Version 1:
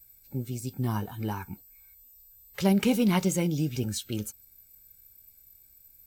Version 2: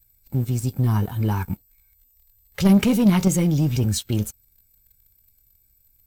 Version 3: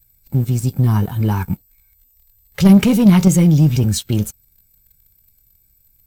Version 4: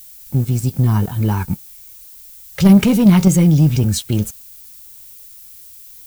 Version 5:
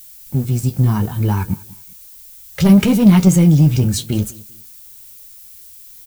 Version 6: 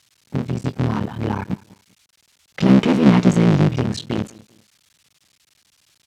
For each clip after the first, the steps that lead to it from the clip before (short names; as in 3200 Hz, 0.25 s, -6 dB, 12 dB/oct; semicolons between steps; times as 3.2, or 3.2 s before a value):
low shelf 150 Hz +11.5 dB; sample leveller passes 2; in parallel at -1 dB: level quantiser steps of 13 dB; on the sum: gain -5 dB
bell 160 Hz +5.5 dB 0.51 oct; gain +4 dB
added noise violet -40 dBFS
flange 0.65 Hz, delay 9.2 ms, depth 6.3 ms, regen -51%; feedback echo 0.196 s, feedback 30%, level -22 dB; gain +4 dB
cycle switcher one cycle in 3, muted; BPF 150–4100 Hz